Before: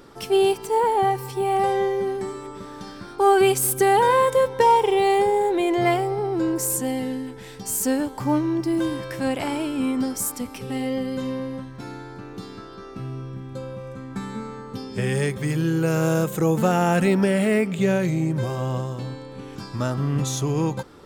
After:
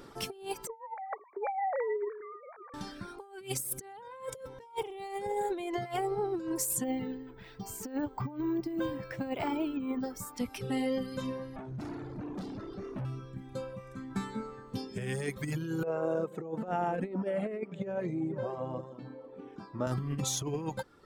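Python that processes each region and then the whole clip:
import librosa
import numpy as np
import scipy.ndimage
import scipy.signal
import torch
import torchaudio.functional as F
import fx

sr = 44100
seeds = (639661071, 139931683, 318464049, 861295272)

y = fx.chain(x, sr, fx.sine_speech(),
    fx.brickwall_lowpass(high_hz=2400.0), at=(0.67, 2.74))
y = fx.chain(y, sr, fx.lowpass(hz=1800.0, slope=6),
    fx.resample_bad(factor=2, down='filtered', up='hold'), at=(6.84, 10.38))
y = fx.chain(y, sr, fx.highpass(hz=47.0, slope=6),
    fx.low_shelf_res(hz=440.0, db=11.5, q=1.5),
    fx.tube_stage(drive_db=31.0, bias=0.35), at=(11.56, 13.05))
y = fx.chain(y, sr, fx.bandpass_q(hz=490.0, q=0.81),
    fx.echo_single(ms=485, db=-15.0), at=(15.83, 19.87))
y = fx.dereverb_blind(y, sr, rt60_s=1.5)
y = fx.over_compress(y, sr, threshold_db=-27.0, ratio=-0.5)
y = y * librosa.db_to_amplitude(-6.5)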